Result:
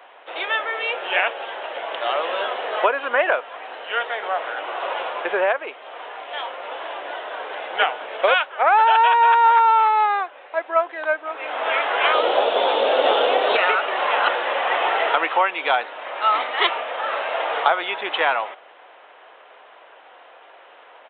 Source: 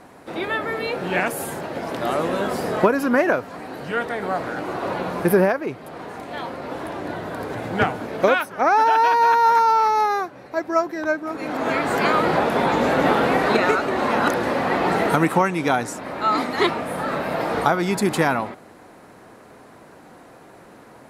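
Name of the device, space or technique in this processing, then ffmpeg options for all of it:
musical greeting card: -filter_complex "[0:a]aresample=8000,aresample=44100,highpass=frequency=540:width=0.5412,highpass=frequency=540:width=1.3066,equalizer=frequency=3000:width_type=o:width=0.53:gain=9,asettb=1/sr,asplit=3[link_01][link_02][link_03];[link_01]atrim=end=12.144[link_04];[link_02]atrim=start=12.14:end=13.56,asetpts=PTS-STARTPTS,afade=type=in:duration=0.004:curve=qsin,afade=type=out:start_time=1.416:duration=0.004:curve=qsin,equalizer=frequency=125:width_type=o:width=1:gain=4,equalizer=frequency=250:width_type=o:width=1:gain=5,equalizer=frequency=500:width_type=o:width=1:gain=6,equalizer=frequency=1000:width_type=o:width=1:gain=-3,equalizer=frequency=2000:width_type=o:width=1:gain=-8,equalizer=frequency=4000:width_type=o:width=1:gain=7,equalizer=frequency=8000:width_type=o:width=1:gain=-3[link_05];[link_03]atrim=start=13.556[link_06];[link_04][link_05]acrossfade=duration=0.004:curve1=hsin:curve2=qsin[link_07];[link_07][link_06]acrossfade=duration=0.004:curve1=qsin:curve2=hsin,volume=1.5dB"

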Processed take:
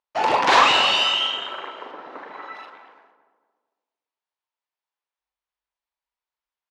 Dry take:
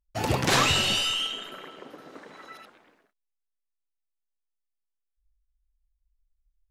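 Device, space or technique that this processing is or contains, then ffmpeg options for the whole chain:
intercom: -filter_complex "[0:a]highpass=490,lowpass=3700,equalizer=frequency=940:width_type=o:width=0.47:gain=8.5,asoftclip=type=tanh:threshold=-12.5dB,asplit=2[link_01][link_02];[link_02]adelay=42,volume=-7dB[link_03];[link_01][link_03]amix=inputs=2:normalize=0,asettb=1/sr,asplit=3[link_04][link_05][link_06];[link_04]atrim=end=1.914[link_07];[link_05]atrim=start=1.91:end=2.57,asetpts=PTS-STARTPTS,afade=type=in:duration=0.004:curve=qsin,afade=type=out:start_time=0.656:duration=0.004:curve=qsin,bass=frequency=250:gain=7,treble=frequency=4000:gain=-8[link_08];[link_06]atrim=start=2.566[link_09];[link_07][link_08]acrossfade=duration=0.004:curve1=hsin:curve2=qsin[link_10];[link_10][link_09]acrossfade=duration=0.004:curve1=qsin:curve2=hsin,asplit=2[link_11][link_12];[link_12]adelay=226,lowpass=frequency=1300:poles=1,volume=-9dB,asplit=2[link_13][link_14];[link_14]adelay=226,lowpass=frequency=1300:poles=1,volume=0.44,asplit=2[link_15][link_16];[link_16]adelay=226,lowpass=frequency=1300:poles=1,volume=0.44,asplit=2[link_17][link_18];[link_18]adelay=226,lowpass=frequency=1300:poles=1,volume=0.44,asplit=2[link_19][link_20];[link_20]adelay=226,lowpass=frequency=1300:poles=1,volume=0.44[link_21];[link_11][link_13][link_15][link_17][link_19][link_21]amix=inputs=6:normalize=0,volume=7dB"

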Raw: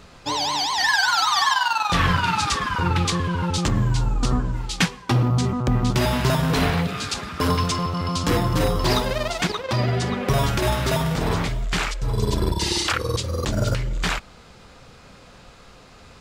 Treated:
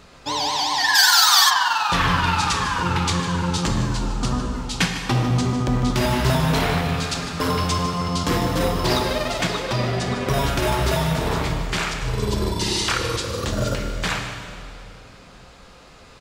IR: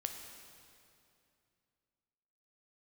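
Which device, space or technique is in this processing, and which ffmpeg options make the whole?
cave: -filter_complex "[0:a]aecho=1:1:151:0.237[link_01];[1:a]atrim=start_sample=2205[link_02];[link_01][link_02]afir=irnorm=-1:irlink=0,asplit=3[link_03][link_04][link_05];[link_03]afade=type=out:start_time=0.94:duration=0.02[link_06];[link_04]aemphasis=mode=production:type=riaa,afade=type=in:start_time=0.94:duration=0.02,afade=type=out:start_time=1.49:duration=0.02[link_07];[link_05]afade=type=in:start_time=1.49:duration=0.02[link_08];[link_06][link_07][link_08]amix=inputs=3:normalize=0,lowshelf=frequency=160:gain=-3.5,volume=1.5dB"

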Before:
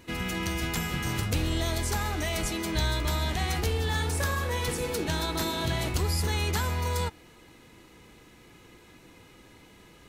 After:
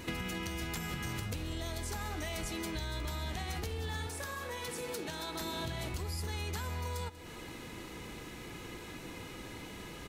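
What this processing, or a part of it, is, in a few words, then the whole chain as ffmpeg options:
serial compression, leveller first: -filter_complex "[0:a]acompressor=threshold=-31dB:ratio=2,acompressor=threshold=-43dB:ratio=8,asettb=1/sr,asplit=3[link_01][link_02][link_03];[link_01]atrim=end=4.074[link_04];[link_02]atrim=start=4.07:end=5.41,asetpts=PTS-STARTPTS,afade=type=in:duration=0.004:curve=qsin,afade=type=out:start_time=1.336:duration=0.004:curve=qsin,highpass=frequency=240:poles=1[link_05];[link_03]atrim=start=5.406[link_06];[link_04][link_05]acrossfade=duration=0.004:curve1=hsin:curve2=qsin[link_07];[link_07][link_06]acrossfade=duration=0.004:curve1=qsin:curve2=hsin,aecho=1:1:190:0.133,volume=7.5dB"

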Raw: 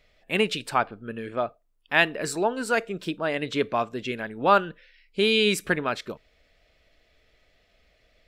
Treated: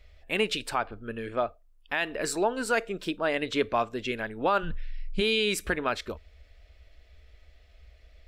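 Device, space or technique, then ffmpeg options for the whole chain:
car stereo with a boomy subwoofer: -filter_complex "[0:a]asplit=3[link_01][link_02][link_03];[link_01]afade=type=out:start_time=4.62:duration=0.02[link_04];[link_02]asubboost=boost=11.5:cutoff=120,afade=type=in:start_time=4.62:duration=0.02,afade=type=out:start_time=5.2:duration=0.02[link_05];[link_03]afade=type=in:start_time=5.2:duration=0.02[link_06];[link_04][link_05][link_06]amix=inputs=3:normalize=0,lowshelf=frequency=100:width_type=q:width=3:gain=10.5,alimiter=limit=-14.5dB:level=0:latency=1:release=127"

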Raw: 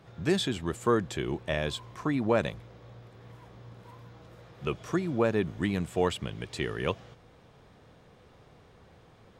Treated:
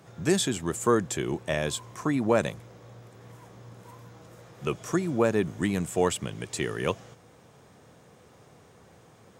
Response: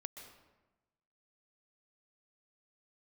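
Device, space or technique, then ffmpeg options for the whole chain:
budget condenser microphone: -af "highpass=98,highshelf=frequency=5300:width_type=q:width=1.5:gain=7.5,volume=2.5dB"

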